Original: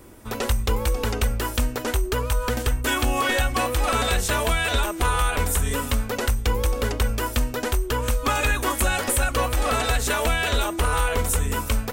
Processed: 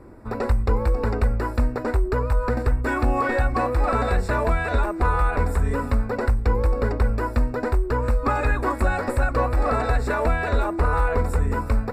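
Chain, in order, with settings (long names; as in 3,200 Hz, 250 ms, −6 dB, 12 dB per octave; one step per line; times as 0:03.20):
moving average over 14 samples
level +2.5 dB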